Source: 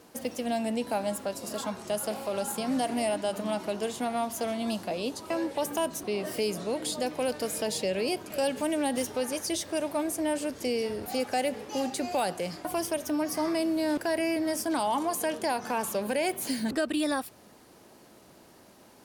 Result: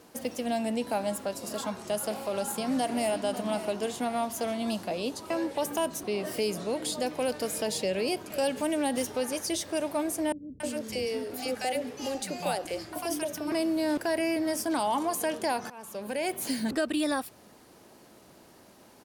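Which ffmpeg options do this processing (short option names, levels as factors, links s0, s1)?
-filter_complex "[0:a]asplit=2[s0][s1];[s1]afade=t=in:st=2.39:d=0.01,afade=t=out:st=3.2:d=0.01,aecho=0:1:550|1100|1650|2200:0.251189|0.087916|0.0307706|0.0107697[s2];[s0][s2]amix=inputs=2:normalize=0,asettb=1/sr,asplit=3[s3][s4][s5];[s3]atrim=end=10.324[s6];[s4]atrim=start=10.32:end=13.52,asetpts=PTS-STARTPTS,afade=t=in:d=0.004:c=qsin,afade=t=out:st=3.196:d=0.004:c=qsin,acrossover=split=280|900[s7][s8][s9];[s9]adelay=280[s10];[s8]adelay=310[s11];[s7][s11][s10]amix=inputs=3:normalize=0,atrim=end_sample=141120[s12];[s5]atrim=start=13.516[s13];[s6][s12]acrossfade=d=0.004:c1=hsin:c2=qsin[s14];[s14][s13]acrossfade=d=0.004:c1=qsin:c2=hsin,asplit=2[s15][s16];[s15]atrim=end=15.7,asetpts=PTS-STARTPTS,afade=t=out:st=15.696:d=0.004:c=hsin:silence=0.0749894[s17];[s16]atrim=start=15.7,asetpts=PTS-STARTPTS,afade=t=in:d=0.73:silence=0.0749894[s18];[s17][s18]concat=n=2:v=0:a=1"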